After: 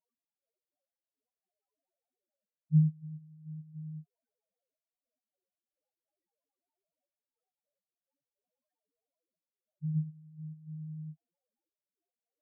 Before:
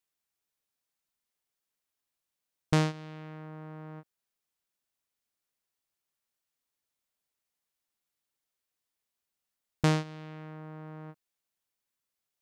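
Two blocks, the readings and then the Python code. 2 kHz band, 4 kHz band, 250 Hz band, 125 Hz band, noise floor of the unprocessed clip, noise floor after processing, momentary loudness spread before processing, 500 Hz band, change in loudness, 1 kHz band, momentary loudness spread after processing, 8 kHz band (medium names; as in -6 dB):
under -40 dB, under -35 dB, no reading, +1.5 dB, under -85 dBFS, under -85 dBFS, 17 LU, under -40 dB, -4.0 dB, under -40 dB, 20 LU, under -30 dB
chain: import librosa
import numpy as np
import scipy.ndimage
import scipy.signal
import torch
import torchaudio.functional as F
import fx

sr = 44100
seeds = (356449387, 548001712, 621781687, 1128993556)

p1 = fx.step_gate(x, sr, bpm=104, pattern='x..x.x..x.xxxxxx', floor_db=-12.0, edge_ms=4.5)
p2 = fx.band_shelf(p1, sr, hz=1000.0, db=8.5, octaves=2.4)
p3 = fx.sample_hold(p2, sr, seeds[0], rate_hz=1700.0, jitter_pct=0)
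p4 = p2 + (p3 * 10.0 ** (-3.0 / 20.0))
p5 = scipy.signal.sosfilt(scipy.signal.butter(2, 150.0, 'highpass', fs=sr, output='sos'), p4)
p6 = fx.spec_topn(p5, sr, count=1)
y = p6 * 10.0 ** (7.0 / 20.0)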